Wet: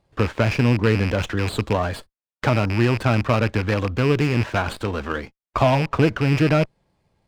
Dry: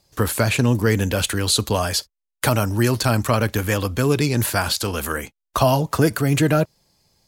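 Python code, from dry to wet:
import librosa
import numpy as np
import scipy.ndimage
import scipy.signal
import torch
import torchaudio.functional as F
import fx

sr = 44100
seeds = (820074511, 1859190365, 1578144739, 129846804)

y = fx.rattle_buzz(x, sr, strikes_db=-23.0, level_db=-13.0)
y = scipy.ndimage.gaussian_filter1d(y, 2.5, mode='constant')
y = fx.running_max(y, sr, window=5)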